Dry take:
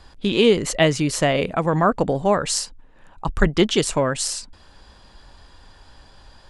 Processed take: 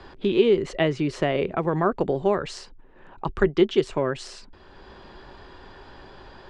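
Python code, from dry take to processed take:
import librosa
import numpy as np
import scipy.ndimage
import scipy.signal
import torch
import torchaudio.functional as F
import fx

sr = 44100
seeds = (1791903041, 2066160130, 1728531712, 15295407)

y = scipy.signal.sosfilt(scipy.signal.butter(2, 3400.0, 'lowpass', fs=sr, output='sos'), x)
y = fx.peak_eq(y, sr, hz=380.0, db=12.0, octaves=0.26)
y = fx.band_squash(y, sr, depth_pct=40)
y = F.gain(torch.from_numpy(y), -6.0).numpy()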